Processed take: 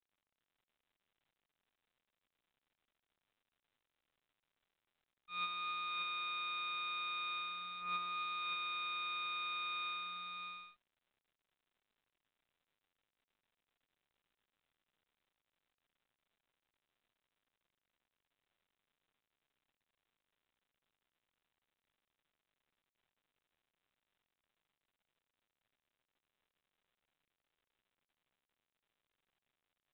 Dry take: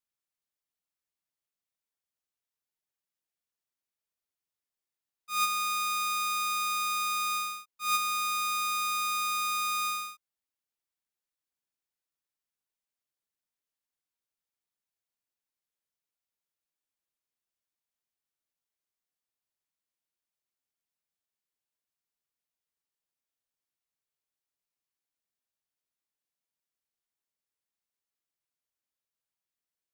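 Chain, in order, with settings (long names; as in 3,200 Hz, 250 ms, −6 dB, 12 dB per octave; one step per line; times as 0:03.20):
notch comb filter 310 Hz
multi-tap delay 97/270/580 ms −12/−10/−4 dB
level −4 dB
mu-law 64 kbit/s 8,000 Hz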